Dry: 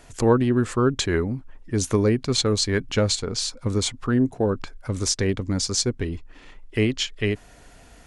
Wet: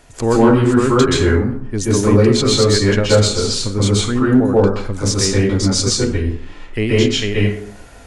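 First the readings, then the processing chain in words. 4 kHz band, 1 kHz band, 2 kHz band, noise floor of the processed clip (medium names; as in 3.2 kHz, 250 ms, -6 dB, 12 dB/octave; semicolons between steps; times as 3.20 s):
+7.0 dB, +9.5 dB, +8.0 dB, -38 dBFS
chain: plate-style reverb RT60 0.58 s, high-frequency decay 0.6×, pre-delay 115 ms, DRR -6.5 dB; in parallel at -6 dB: hard clipper -9 dBFS, distortion -16 dB; on the sum: trim -2 dB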